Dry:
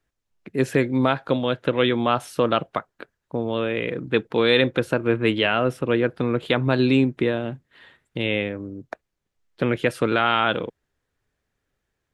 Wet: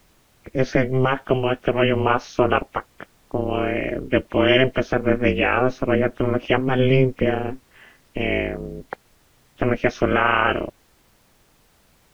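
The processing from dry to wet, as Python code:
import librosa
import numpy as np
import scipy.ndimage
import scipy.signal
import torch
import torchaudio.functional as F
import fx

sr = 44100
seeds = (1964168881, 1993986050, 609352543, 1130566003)

y = fx.freq_compress(x, sr, knee_hz=2000.0, ratio=1.5)
y = y * np.sin(2.0 * np.pi * 130.0 * np.arange(len(y)) / sr)
y = fx.dmg_noise_colour(y, sr, seeds[0], colour='pink', level_db=-63.0)
y = F.gain(torch.from_numpy(y), 5.0).numpy()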